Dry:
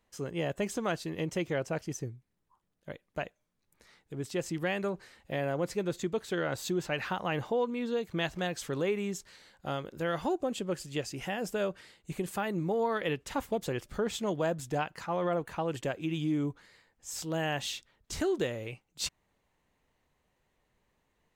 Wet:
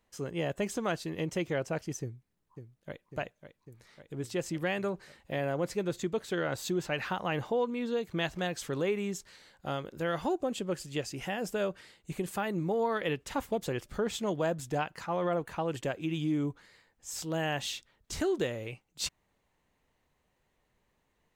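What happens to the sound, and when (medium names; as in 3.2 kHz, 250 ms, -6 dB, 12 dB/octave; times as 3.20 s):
2.01–3.07 s: echo throw 550 ms, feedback 75%, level -9.5 dB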